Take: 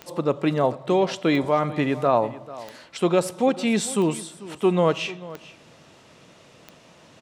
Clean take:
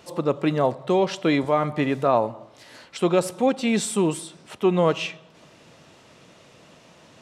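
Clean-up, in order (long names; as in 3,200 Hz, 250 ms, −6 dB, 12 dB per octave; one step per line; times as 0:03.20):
click removal
echo removal 442 ms −18 dB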